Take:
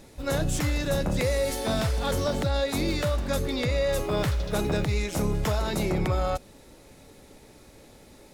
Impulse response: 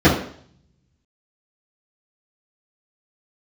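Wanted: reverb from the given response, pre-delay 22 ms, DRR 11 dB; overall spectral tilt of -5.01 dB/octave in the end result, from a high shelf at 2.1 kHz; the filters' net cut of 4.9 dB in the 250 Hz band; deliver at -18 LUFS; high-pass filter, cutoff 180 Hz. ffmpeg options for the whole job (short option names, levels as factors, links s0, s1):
-filter_complex "[0:a]highpass=180,equalizer=f=250:t=o:g=-4.5,highshelf=f=2100:g=-4.5,asplit=2[s0][s1];[1:a]atrim=start_sample=2205,adelay=22[s2];[s1][s2]afir=irnorm=-1:irlink=0,volume=0.0158[s3];[s0][s3]amix=inputs=2:normalize=0,volume=3.98"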